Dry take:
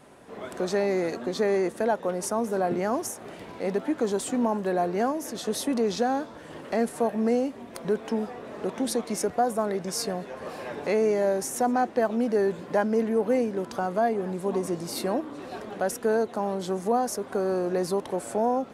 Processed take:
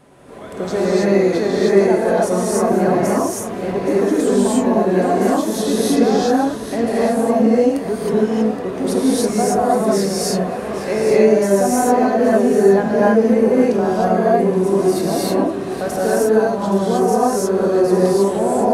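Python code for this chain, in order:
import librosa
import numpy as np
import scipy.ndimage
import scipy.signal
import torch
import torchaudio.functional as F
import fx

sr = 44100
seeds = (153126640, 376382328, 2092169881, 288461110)

y = fx.low_shelf(x, sr, hz=380.0, db=5.5)
y = y + 10.0 ** (-11.5 / 20.0) * np.pad(y, (int(821 * sr / 1000.0), 0))[:len(y)]
y = fx.rev_gated(y, sr, seeds[0], gate_ms=340, shape='rising', drr_db=-8.0)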